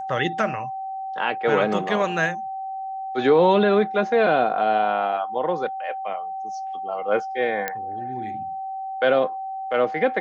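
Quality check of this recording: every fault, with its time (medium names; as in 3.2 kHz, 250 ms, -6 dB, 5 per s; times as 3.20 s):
whine 770 Hz -28 dBFS
7.68 s: pop -10 dBFS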